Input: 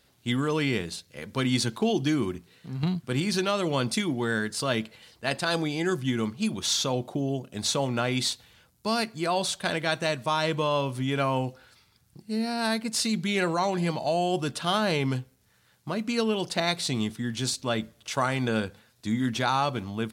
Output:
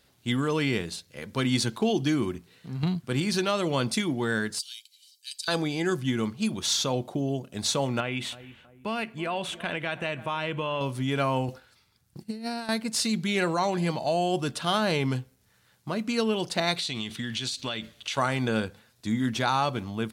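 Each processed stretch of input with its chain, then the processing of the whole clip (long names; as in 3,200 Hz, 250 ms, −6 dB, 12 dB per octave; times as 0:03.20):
0:04.59–0:05.48: inverse Chebyshev high-pass filter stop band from 680 Hz, stop band 80 dB + comb filter 1.3 ms, depth 67%
0:08.00–0:10.81: high shelf with overshoot 3,600 Hz −8 dB, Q 3 + feedback echo with a low-pass in the loop 322 ms, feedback 43%, low-pass 1,100 Hz, level −19 dB + downward compressor 2 to 1, threshold −29 dBFS
0:11.48–0:12.69: noise gate −54 dBFS, range −9 dB + compressor whose output falls as the input rises −32 dBFS, ratio −0.5
0:16.76–0:18.18: parametric band 3,200 Hz +12.5 dB 1.8 octaves + downward compressor 10 to 1, threshold −27 dBFS + notch filter 5,200 Hz, Q 18
whole clip: no processing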